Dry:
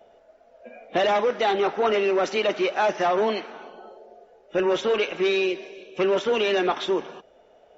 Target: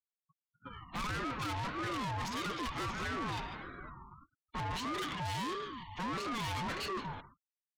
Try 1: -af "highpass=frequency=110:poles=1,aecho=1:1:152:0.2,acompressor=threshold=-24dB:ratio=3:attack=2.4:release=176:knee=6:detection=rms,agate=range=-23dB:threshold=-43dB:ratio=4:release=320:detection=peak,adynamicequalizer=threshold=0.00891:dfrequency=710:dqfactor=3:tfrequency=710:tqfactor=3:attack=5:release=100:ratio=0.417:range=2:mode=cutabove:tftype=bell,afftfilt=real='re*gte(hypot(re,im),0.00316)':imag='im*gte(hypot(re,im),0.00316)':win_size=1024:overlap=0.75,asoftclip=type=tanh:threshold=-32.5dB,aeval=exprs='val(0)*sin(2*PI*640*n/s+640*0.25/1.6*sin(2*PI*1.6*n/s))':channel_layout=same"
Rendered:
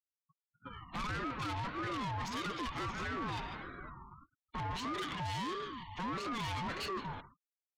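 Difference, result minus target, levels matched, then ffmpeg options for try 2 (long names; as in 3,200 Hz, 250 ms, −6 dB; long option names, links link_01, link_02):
downward compressor: peak gain reduction +7 dB
-af "highpass=frequency=110:poles=1,aecho=1:1:152:0.2,agate=range=-23dB:threshold=-43dB:ratio=4:release=320:detection=peak,adynamicequalizer=threshold=0.00891:dfrequency=710:dqfactor=3:tfrequency=710:tqfactor=3:attack=5:release=100:ratio=0.417:range=2:mode=cutabove:tftype=bell,afftfilt=real='re*gte(hypot(re,im),0.00316)':imag='im*gte(hypot(re,im),0.00316)':win_size=1024:overlap=0.75,asoftclip=type=tanh:threshold=-32.5dB,aeval=exprs='val(0)*sin(2*PI*640*n/s+640*0.25/1.6*sin(2*PI*1.6*n/s))':channel_layout=same"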